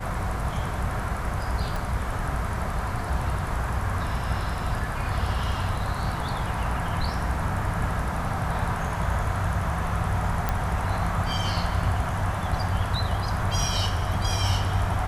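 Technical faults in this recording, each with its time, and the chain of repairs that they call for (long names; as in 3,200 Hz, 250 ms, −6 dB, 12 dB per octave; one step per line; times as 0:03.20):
0:01.76: click
0:10.49: click −11 dBFS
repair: click removal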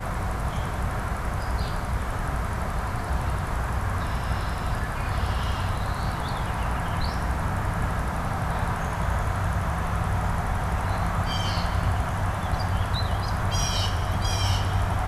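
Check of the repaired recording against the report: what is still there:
0:01.76: click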